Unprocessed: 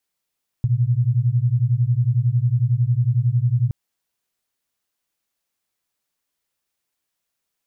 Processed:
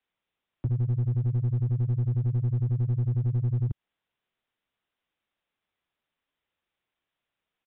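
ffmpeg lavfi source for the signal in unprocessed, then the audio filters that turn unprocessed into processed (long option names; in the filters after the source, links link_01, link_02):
-f lavfi -i "aevalsrc='0.119*(sin(2*PI*116*t)+sin(2*PI*127*t))':duration=3.07:sample_rate=44100"
-filter_complex "[0:a]acrossover=split=130|290[link_01][link_02][link_03];[link_01]acompressor=threshold=-28dB:ratio=4[link_04];[link_02]acompressor=threshold=-31dB:ratio=4[link_05];[link_03]acompressor=threshold=-50dB:ratio=4[link_06];[link_04][link_05][link_06]amix=inputs=3:normalize=0,aresample=8000,aeval=exprs='clip(val(0),-1,0.0631)':channel_layout=same,aresample=44100"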